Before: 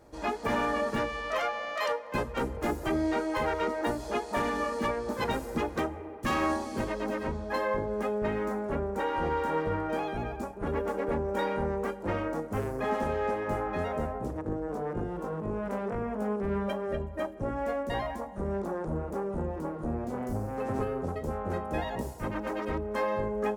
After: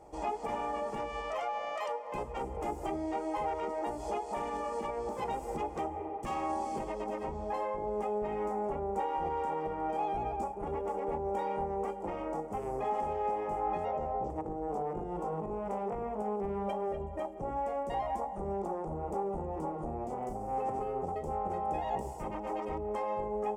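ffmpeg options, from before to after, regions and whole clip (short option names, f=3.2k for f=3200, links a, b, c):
-filter_complex "[0:a]asettb=1/sr,asplit=3[a][b][c];[a]atrim=end=13.854[d];[b]atrim=start=13.85:end=14.3,asetpts=PTS-STARTPTS,afade=t=in:d=0.004:c=qsin,afade=t=out:st=0.446:d=0.004:c=qsin,lowpass=f=6.4k:w=0.5412,lowpass=f=6.4k:w=1.3066,equalizer=f=560:w=7.4:g=8.5[e];[c]atrim=start=14.296[f];[d][e]acrossfade=d=0.004:c1=hsin:c2=qsin[g];[g][f]acrossfade=d=0.004:c1=qsin:c2=hsin,highshelf=f=10k:g=-11.5,alimiter=level_in=5dB:limit=-24dB:level=0:latency=1:release=183,volume=-5dB,equalizer=f=100:t=o:w=0.33:g=-11,equalizer=f=250:t=o:w=0.33:g=-7,equalizer=f=400:t=o:w=0.33:g=3,equalizer=f=800:t=o:w=0.33:g=11,equalizer=f=1.6k:t=o:w=0.33:g=-12,equalizer=f=4k:t=o:w=0.33:g=-10,equalizer=f=8k:t=o:w=0.33:g=7"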